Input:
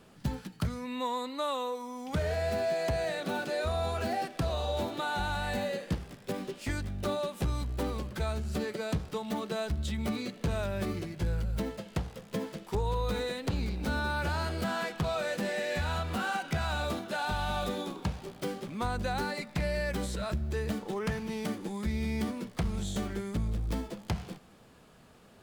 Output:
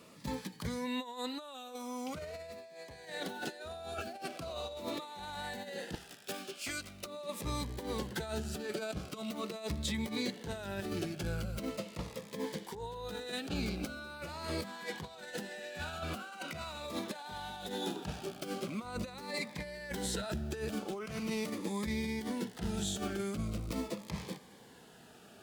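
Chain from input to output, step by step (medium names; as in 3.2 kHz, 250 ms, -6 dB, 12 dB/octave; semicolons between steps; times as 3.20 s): high-pass 330 Hz 6 dB/octave, from 5.95 s 1.4 kHz, from 7.05 s 290 Hz; compressor with a negative ratio -38 dBFS, ratio -0.5; Shepard-style phaser falling 0.42 Hz; trim +1.5 dB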